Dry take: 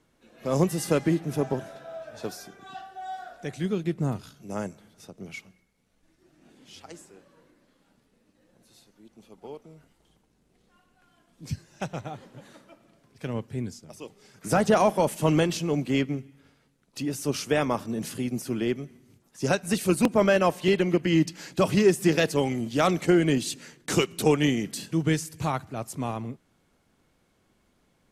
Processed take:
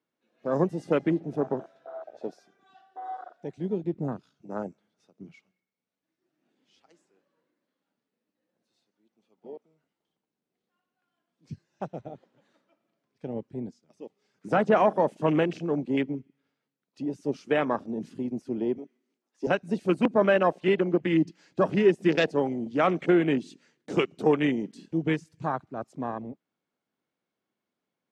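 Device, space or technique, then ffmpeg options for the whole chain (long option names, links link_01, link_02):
over-cleaned archive recording: -filter_complex "[0:a]highpass=200,lowpass=5600,afwtdn=0.0224,asettb=1/sr,asplit=3[link_01][link_02][link_03];[link_01]atrim=end=18.784[link_04];[link_02]atrim=start=18.78:end=19.47,asetpts=PTS-STARTPTS,afade=type=in:duration=0.004:curve=qsin,afade=type=out:start_time=0.686:duration=0.004:curve=qsin,highpass=frequency=240:width=0.5412,highpass=frequency=240:width=1.3066[link_05];[link_03]atrim=start=19.466[link_06];[link_04][link_05]acrossfade=duration=0.004:curve1=hsin:curve2=qsin[link_07];[link_07][link_06]acrossfade=duration=0.004:curve1=qsin:curve2=hsin"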